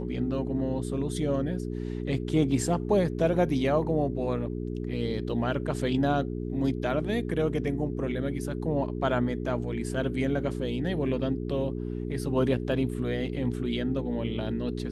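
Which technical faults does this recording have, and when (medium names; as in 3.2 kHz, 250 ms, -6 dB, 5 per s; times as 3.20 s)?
hum 60 Hz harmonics 7 -33 dBFS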